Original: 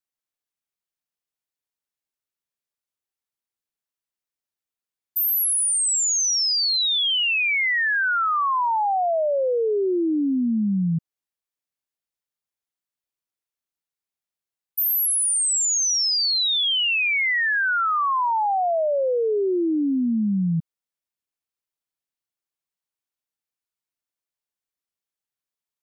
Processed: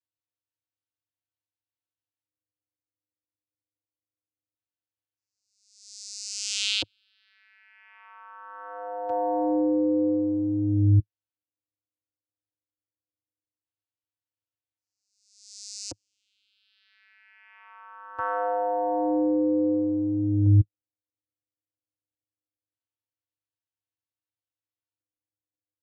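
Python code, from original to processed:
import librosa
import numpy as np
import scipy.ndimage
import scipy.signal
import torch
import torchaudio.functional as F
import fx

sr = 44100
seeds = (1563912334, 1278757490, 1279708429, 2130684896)

y = fx.filter_lfo_lowpass(x, sr, shape='square', hz=0.22, low_hz=430.0, high_hz=4500.0, q=2.3)
y = fx.vocoder(y, sr, bands=8, carrier='square', carrier_hz=102.0)
y = y * librosa.db_to_amplitude(-2.5)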